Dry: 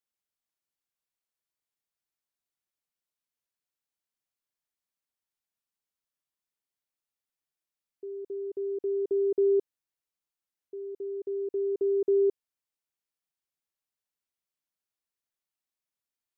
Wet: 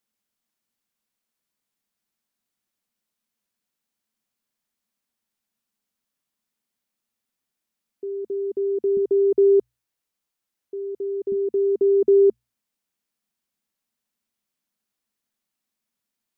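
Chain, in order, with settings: peaking EQ 220 Hz +12.5 dB 0.44 oct, from 8.97 s +4.5 dB, from 11.32 s +13 dB; hum notches 60/120 Hz; trim +7.5 dB

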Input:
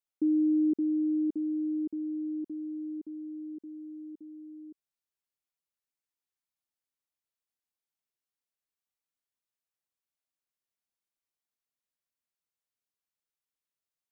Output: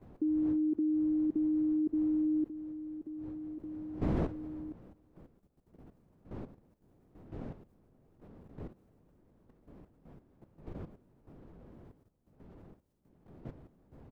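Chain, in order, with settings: wind noise 290 Hz -48 dBFS; echo from a far wall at 91 m, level -25 dB; level held to a coarse grid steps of 12 dB; trim +6.5 dB

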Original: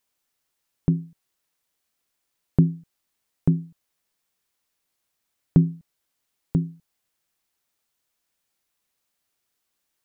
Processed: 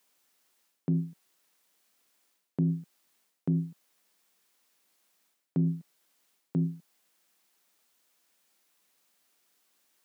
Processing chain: high-pass 170 Hz 24 dB/octave; reverse; compression 6:1, threshold -32 dBFS, peak gain reduction 17 dB; reverse; trim +6.5 dB

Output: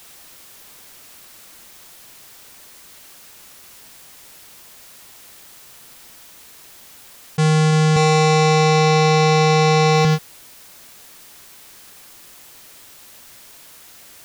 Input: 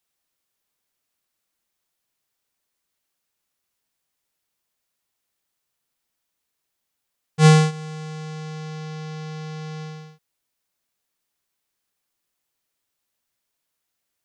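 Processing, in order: 7.96–10.05 s: comb 2.6 ms, depth 93%; level flattener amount 100%; trim -5 dB

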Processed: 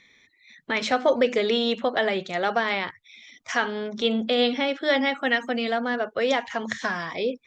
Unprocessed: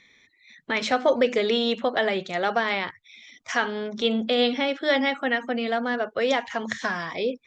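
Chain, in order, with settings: 5.23–5.71 s: treble shelf 3.4 kHz -> 5 kHz +11 dB

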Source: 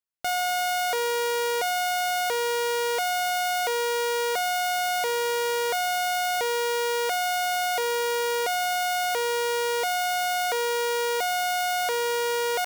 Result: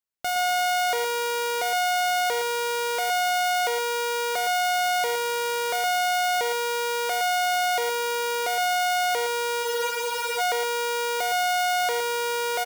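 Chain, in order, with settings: delay 115 ms -9 dB; spectral freeze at 9.65 s, 0.75 s

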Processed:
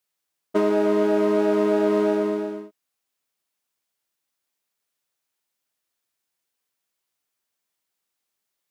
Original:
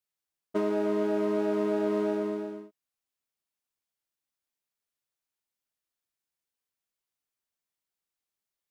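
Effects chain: bass shelf 120 Hz -9.5 dB; trim +8.5 dB

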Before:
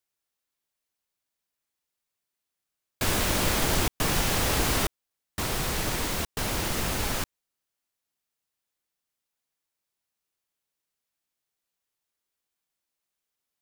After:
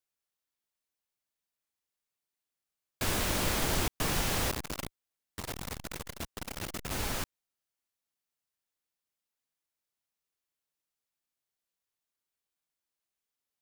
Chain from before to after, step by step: 4.51–6.91 s: transformer saturation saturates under 630 Hz; trim -5 dB

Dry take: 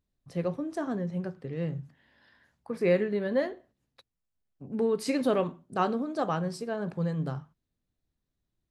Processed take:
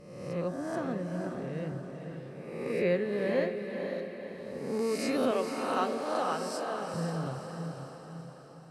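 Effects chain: reverse spectral sustain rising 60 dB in 1.12 s; 5.31–6.94 s: tone controls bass -14 dB, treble +4 dB; echo that smears into a reverb 503 ms, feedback 51%, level -5.5 dB; trim -5 dB

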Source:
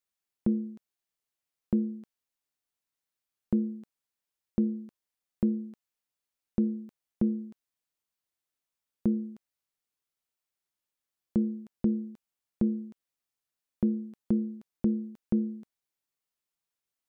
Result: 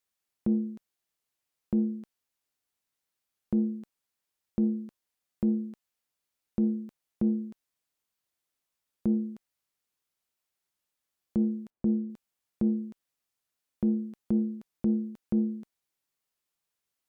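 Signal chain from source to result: peak limiter -22.5 dBFS, peak gain reduction 6.5 dB; Chebyshev shaper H 3 -34 dB, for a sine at -22.5 dBFS; 11.70–12.10 s: Bessel low-pass 1.1 kHz; trim +4 dB

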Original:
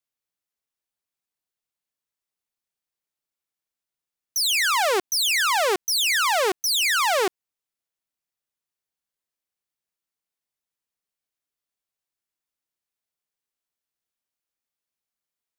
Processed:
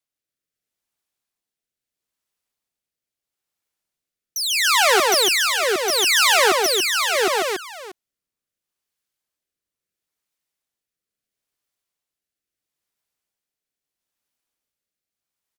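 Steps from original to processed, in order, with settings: on a send: multi-tap echo 143/285/637 ms -4/-4.5/-17.5 dB; on the sum: rotary cabinet horn 0.75 Hz; trim +4.5 dB

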